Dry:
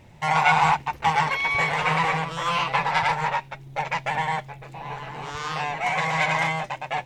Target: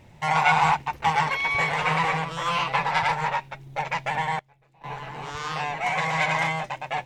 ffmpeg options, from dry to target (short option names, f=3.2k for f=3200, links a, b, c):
-filter_complex "[0:a]asettb=1/sr,asplit=3[a][b][c];[a]atrim=end=4.394[d];[b]atrim=start=4.39:end=4.84,asetpts=PTS-STARTPTS,afade=t=in:d=0.004:c=qsin,afade=t=out:st=0.446:d=0.004:c=qsin,agate=range=-20dB:threshold=-33dB:ratio=16:detection=peak[e];[c]atrim=start=4.836[f];[d][e]acrossfade=d=0.004:c1=hsin:c2=qsin[g];[g][f]acrossfade=d=0.004:c1=qsin:c2=hsin,volume=-1dB"